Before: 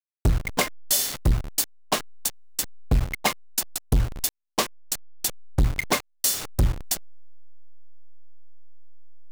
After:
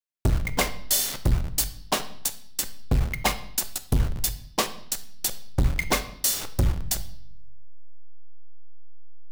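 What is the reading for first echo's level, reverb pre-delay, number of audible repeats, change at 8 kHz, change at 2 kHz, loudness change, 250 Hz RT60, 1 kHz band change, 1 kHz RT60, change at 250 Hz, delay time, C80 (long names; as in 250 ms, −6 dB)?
no echo audible, 3 ms, no echo audible, −0.5 dB, −0.5 dB, −0.5 dB, 1.2 s, −0.5 dB, 0.60 s, −0.5 dB, no echo audible, 17.0 dB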